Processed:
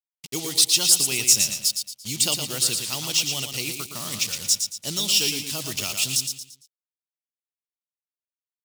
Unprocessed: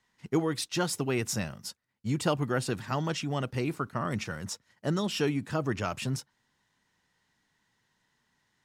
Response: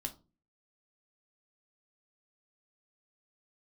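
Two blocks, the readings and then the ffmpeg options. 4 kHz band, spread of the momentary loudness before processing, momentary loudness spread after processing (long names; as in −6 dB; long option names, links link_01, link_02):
+17.0 dB, 8 LU, 13 LU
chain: -af "acrusher=bits=6:mix=0:aa=0.5,aecho=1:1:114|228|342|456:0.473|0.17|0.0613|0.0221,aexciter=amount=9.9:drive=7.4:freq=2500,volume=-6.5dB"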